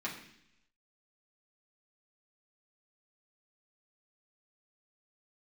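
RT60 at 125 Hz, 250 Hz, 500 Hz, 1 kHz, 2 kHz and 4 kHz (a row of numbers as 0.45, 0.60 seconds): 0.90, 0.90, 0.75, 0.70, 0.95, 0.90 seconds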